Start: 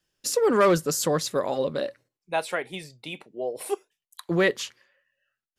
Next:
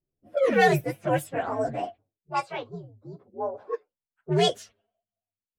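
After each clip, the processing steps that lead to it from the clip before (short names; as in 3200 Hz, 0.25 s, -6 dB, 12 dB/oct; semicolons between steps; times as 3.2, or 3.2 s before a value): inharmonic rescaling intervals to 127%; low-pass opened by the level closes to 410 Hz, open at -22 dBFS; gain +2 dB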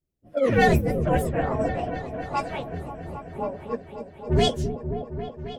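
octaver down 1 oct, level +3 dB; repeats that get brighter 0.268 s, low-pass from 400 Hz, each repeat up 1 oct, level -6 dB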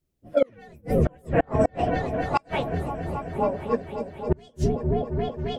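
flipped gate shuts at -14 dBFS, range -35 dB; gain +5.5 dB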